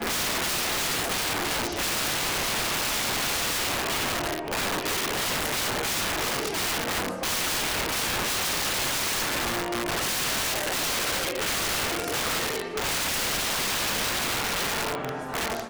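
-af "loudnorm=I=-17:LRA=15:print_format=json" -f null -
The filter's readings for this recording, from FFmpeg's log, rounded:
"input_i" : "-25.7",
"input_tp" : "-17.4",
"input_lra" : "0.8",
"input_thresh" : "-35.7",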